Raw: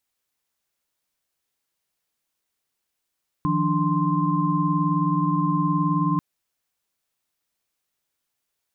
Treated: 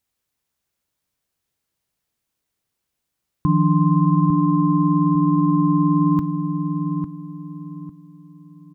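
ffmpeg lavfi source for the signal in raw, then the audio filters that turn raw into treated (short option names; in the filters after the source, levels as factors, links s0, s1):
-f lavfi -i "aevalsrc='0.0596*(sin(2*PI*155.56*t)+sin(2*PI*174.61*t)+sin(2*PI*293.66*t)+sin(2*PI*1046.5*t))':d=2.74:s=44100"
-filter_complex "[0:a]equalizer=f=90:w=0.36:g=9,bandreject=f=281.5:t=h:w=4,bandreject=f=563:t=h:w=4,bandreject=f=844.5:t=h:w=4,bandreject=f=1126:t=h:w=4,bandreject=f=1407.5:t=h:w=4,bandreject=f=1689:t=h:w=4,bandreject=f=1970.5:t=h:w=4,bandreject=f=2252:t=h:w=4,bandreject=f=2533.5:t=h:w=4,bandreject=f=2815:t=h:w=4,bandreject=f=3096.5:t=h:w=4,bandreject=f=3378:t=h:w=4,bandreject=f=3659.5:t=h:w=4,bandreject=f=3941:t=h:w=4,bandreject=f=4222.5:t=h:w=4,bandreject=f=4504:t=h:w=4,bandreject=f=4785.5:t=h:w=4,bandreject=f=5067:t=h:w=4,bandreject=f=5348.5:t=h:w=4,bandreject=f=5630:t=h:w=4,bandreject=f=5911.5:t=h:w=4,bandreject=f=6193:t=h:w=4,bandreject=f=6474.5:t=h:w=4,bandreject=f=6756:t=h:w=4,bandreject=f=7037.5:t=h:w=4,bandreject=f=7319:t=h:w=4,bandreject=f=7600.5:t=h:w=4,bandreject=f=7882:t=h:w=4,asplit=2[s0][s1];[s1]adelay=851,lowpass=f=840:p=1,volume=0.501,asplit=2[s2][s3];[s3]adelay=851,lowpass=f=840:p=1,volume=0.32,asplit=2[s4][s5];[s5]adelay=851,lowpass=f=840:p=1,volume=0.32,asplit=2[s6][s7];[s7]adelay=851,lowpass=f=840:p=1,volume=0.32[s8];[s2][s4][s6][s8]amix=inputs=4:normalize=0[s9];[s0][s9]amix=inputs=2:normalize=0"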